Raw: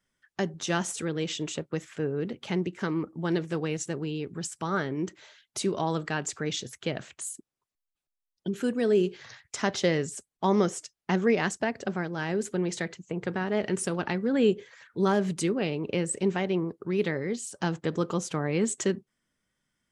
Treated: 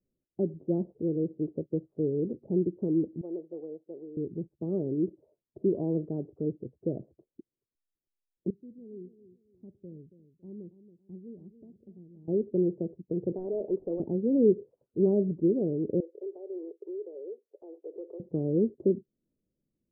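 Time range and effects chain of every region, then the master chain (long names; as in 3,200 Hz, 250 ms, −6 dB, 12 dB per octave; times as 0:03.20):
0:03.21–0:04.17: high-pass filter 670 Hz + high-shelf EQ 3,200 Hz −11 dB
0:08.50–0:12.28: guitar amp tone stack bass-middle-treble 6-0-2 + repeating echo 278 ms, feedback 31%, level −13.5 dB
0:13.32–0:14.00: high-pass filter 650 Hz 6 dB per octave + mid-hump overdrive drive 18 dB, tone 1,700 Hz, clips at −18 dBFS
0:16.00–0:18.20: Butterworth high-pass 380 Hz 48 dB per octave + downward compressor 3 to 1, threshold −39 dBFS
whole clip: Butterworth low-pass 560 Hz 36 dB per octave; parametric band 340 Hz +5.5 dB 0.56 octaves; level −1 dB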